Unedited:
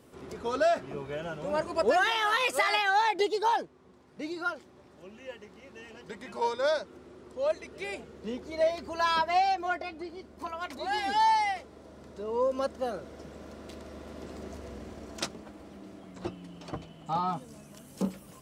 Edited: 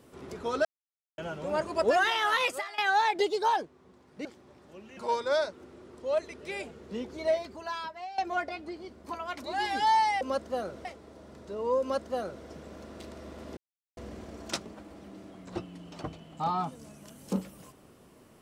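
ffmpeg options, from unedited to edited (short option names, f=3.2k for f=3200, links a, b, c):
-filter_complex "[0:a]asplit=11[a][b][c][d][e][f][g][h][i][j][k];[a]atrim=end=0.65,asetpts=PTS-STARTPTS,afade=t=out:st=0.646:d=0.004:c=hsin[l];[b]atrim=start=0.65:end=1.18,asetpts=PTS-STARTPTS,volume=0[m];[c]atrim=start=1.18:end=2.78,asetpts=PTS-STARTPTS,afade=t=in:d=0.004:c=hsin,afade=t=out:st=1.27:d=0.33:c=qua:silence=0.112202[n];[d]atrim=start=2.78:end=4.252,asetpts=PTS-STARTPTS,afade=t=in:d=0.004:c=hsin:silence=0.112202[o];[e]atrim=start=4.538:end=5.262[p];[f]atrim=start=6.298:end=9.51,asetpts=PTS-STARTPTS,afade=t=out:st=2.292:d=0.92:c=qua:silence=0.149624[q];[g]atrim=start=9.51:end=11.542,asetpts=PTS-STARTPTS,afade=t=in:d=0.004:c=hsin:silence=0.149624[r];[h]atrim=start=12.498:end=13.142[s];[i]atrim=start=11.538:end=14.26,asetpts=PTS-STARTPTS,afade=t=out:st=2.718:d=0.004:c=hsin[t];[j]atrim=start=14.26:end=14.66,asetpts=PTS-STARTPTS,volume=0[u];[k]atrim=start=14.66,asetpts=PTS-STARTPTS,afade=t=in:d=0.004:c=hsin[v];[l][m][n][o]concat=n=4:v=0:a=1[w];[w][p]acrossfade=d=0.004:c1=hsin:c2=hsin[x];[q][r]concat=n=2:v=0:a=1[y];[x][y]acrossfade=d=0.004:c1=hsin:c2=hsin[z];[z][s]acrossfade=d=0.004:c1=hsin:c2=hsin[aa];[t][u][v]concat=n=3:v=0:a=1[ab];[aa][ab]acrossfade=d=0.004:c1=hsin:c2=hsin"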